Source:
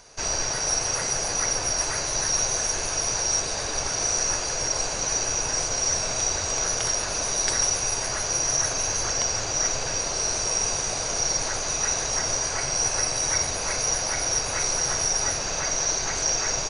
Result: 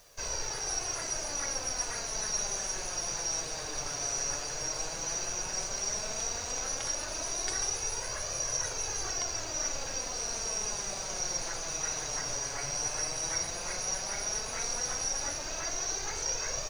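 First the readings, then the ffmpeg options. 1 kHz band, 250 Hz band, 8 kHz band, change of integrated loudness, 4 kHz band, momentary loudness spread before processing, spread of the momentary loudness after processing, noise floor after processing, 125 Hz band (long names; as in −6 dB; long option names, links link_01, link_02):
−9.0 dB, −8.5 dB, −9.0 dB, −9.0 dB, −9.0 dB, 3 LU, 3 LU, −38 dBFS, −10.5 dB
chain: -af "flanger=delay=1.6:depth=5.6:regen=39:speed=0.12:shape=triangular,acrusher=bits=8:mix=0:aa=0.000001,volume=-5dB"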